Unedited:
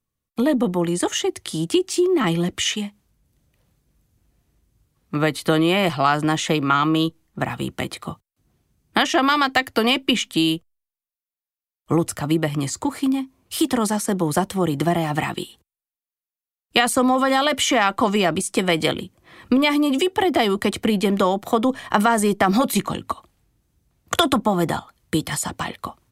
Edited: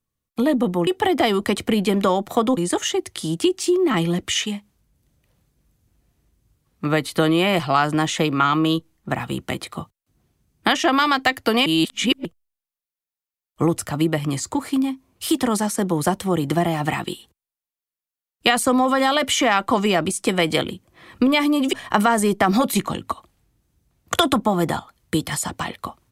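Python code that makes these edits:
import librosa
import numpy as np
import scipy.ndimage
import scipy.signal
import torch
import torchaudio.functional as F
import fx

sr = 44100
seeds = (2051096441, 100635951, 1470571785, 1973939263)

y = fx.edit(x, sr, fx.reverse_span(start_s=9.96, length_s=0.59),
    fx.move(start_s=20.03, length_s=1.7, to_s=0.87), tone=tone)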